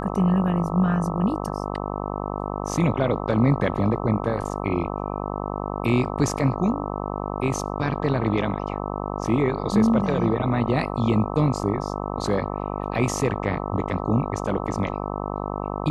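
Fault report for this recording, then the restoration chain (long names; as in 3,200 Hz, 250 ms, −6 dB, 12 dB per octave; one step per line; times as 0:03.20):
mains buzz 50 Hz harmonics 26 −29 dBFS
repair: hum removal 50 Hz, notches 26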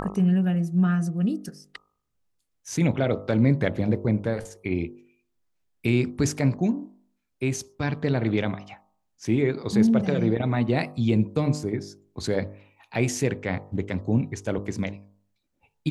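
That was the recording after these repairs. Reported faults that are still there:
none of them is left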